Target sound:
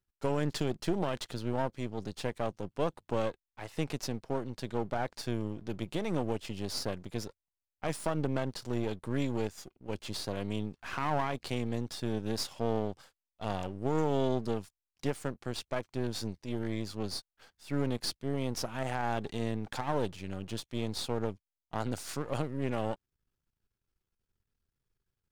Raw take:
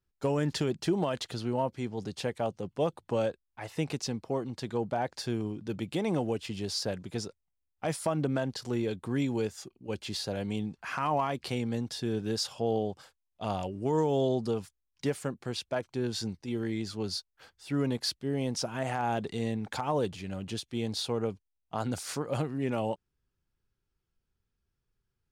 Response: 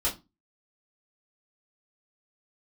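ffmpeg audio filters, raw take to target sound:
-af "aeval=exprs='if(lt(val(0),0),0.251*val(0),val(0))':c=same"

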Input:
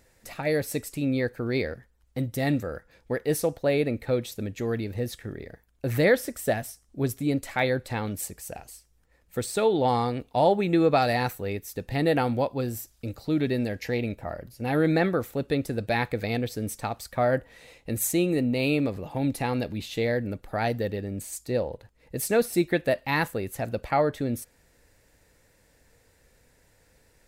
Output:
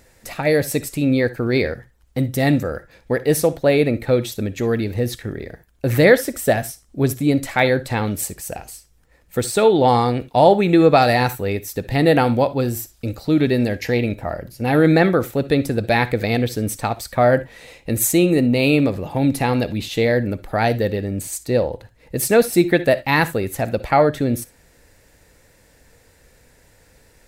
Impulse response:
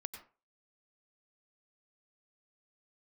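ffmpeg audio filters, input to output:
-filter_complex "[0:a]asplit=2[a][b];[1:a]atrim=start_sample=2205,atrim=end_sample=6174,asetrate=70560,aresample=44100[c];[b][c]afir=irnorm=-1:irlink=0,volume=1.5dB[d];[a][d]amix=inputs=2:normalize=0,volume=5dB"

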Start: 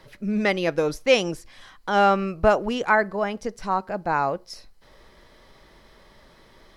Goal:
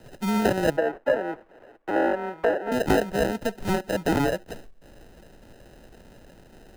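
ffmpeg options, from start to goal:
-filter_complex "[0:a]acrusher=samples=39:mix=1:aa=0.000001,acrossover=split=270|2000[a][b][c];[a]acompressor=threshold=-30dB:ratio=4[d];[b]acompressor=threshold=-21dB:ratio=4[e];[c]acompressor=threshold=-39dB:ratio=4[f];[d][e][f]amix=inputs=3:normalize=0,asettb=1/sr,asplit=3[g][h][i];[g]atrim=end=0.774[j];[h]atrim=start=0.77:end=2.72,asetpts=PTS-STARTPTS,afade=t=in:d=0.004:c=qsin,afade=t=out:st=1.946:d=0.004:c=qsin,acrossover=split=310 2300:gain=0.0891 1 0.0891[k][l][m];[k][l][m]amix=inputs=3:normalize=0[n];[i]atrim=start=2.716[o];[j][n]acrossfade=d=0.004:c1=hsin:c2=qsin[p];[p][o]acrossfade=d=0.004:c1=qsin:c2=hsin,volume=3dB"

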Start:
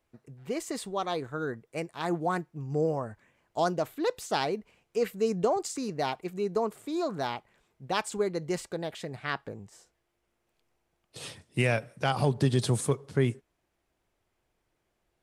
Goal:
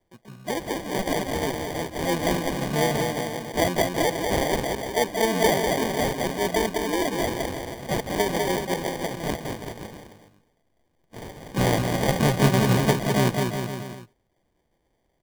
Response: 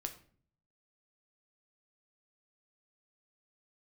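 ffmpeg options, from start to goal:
-filter_complex "[0:a]asplit=2[a][b];[b]asetrate=66075,aresample=44100,atempo=0.66742,volume=-3dB[c];[a][c]amix=inputs=2:normalize=0,aecho=1:1:200|370|514.5|637.3|741.7:0.631|0.398|0.251|0.158|0.1,acrusher=samples=33:mix=1:aa=0.000001,volume=2.5dB"

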